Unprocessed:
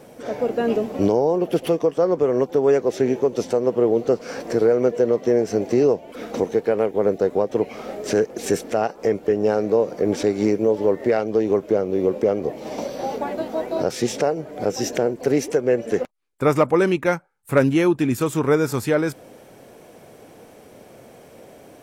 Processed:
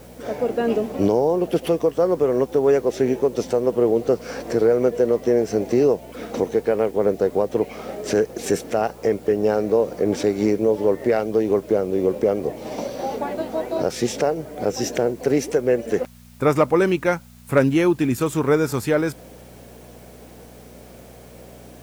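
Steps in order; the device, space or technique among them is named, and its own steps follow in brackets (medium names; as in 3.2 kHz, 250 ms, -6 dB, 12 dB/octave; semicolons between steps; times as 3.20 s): video cassette with head-switching buzz (mains buzz 60 Hz, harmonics 4, -47 dBFS -2 dB/octave; white noise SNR 33 dB)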